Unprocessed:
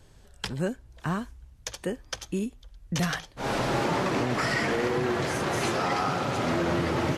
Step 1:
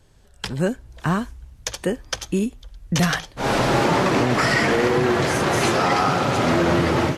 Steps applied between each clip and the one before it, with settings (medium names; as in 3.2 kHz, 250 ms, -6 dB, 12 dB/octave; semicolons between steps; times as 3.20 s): level rider gain up to 9 dB; trim -1 dB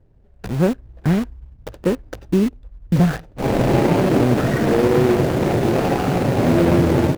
median filter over 41 samples; treble shelf 4.7 kHz -8.5 dB; in parallel at -4.5 dB: bit crusher 5-bit; on the sum: trim +1.5 dB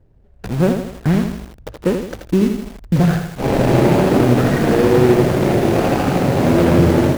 bit-crushed delay 81 ms, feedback 55%, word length 6-bit, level -6 dB; trim +1.5 dB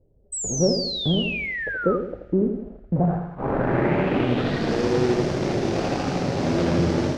low-pass sweep 530 Hz -> 5.5 kHz, 2.75–4.79 s; painted sound fall, 0.32–1.97 s, 1.2–8.2 kHz -20 dBFS; two-slope reverb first 0.76 s, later 2.7 s, from -20 dB, DRR 13 dB; trim -9 dB